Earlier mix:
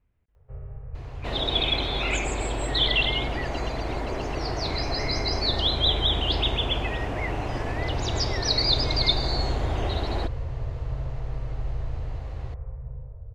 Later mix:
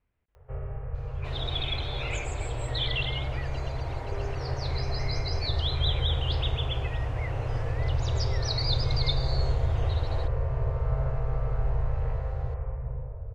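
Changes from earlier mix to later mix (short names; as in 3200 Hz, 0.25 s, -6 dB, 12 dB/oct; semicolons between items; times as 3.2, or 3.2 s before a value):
first sound +10.5 dB; second sound -8.0 dB; master: add low shelf 320 Hz -8 dB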